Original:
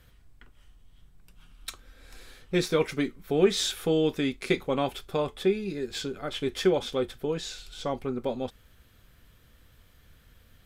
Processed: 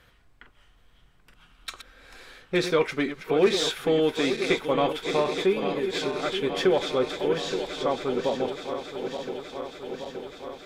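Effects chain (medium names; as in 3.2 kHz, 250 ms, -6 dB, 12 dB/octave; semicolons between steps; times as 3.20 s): backward echo that repeats 437 ms, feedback 83%, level -10 dB; overdrive pedal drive 13 dB, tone 2.2 kHz, clips at -9 dBFS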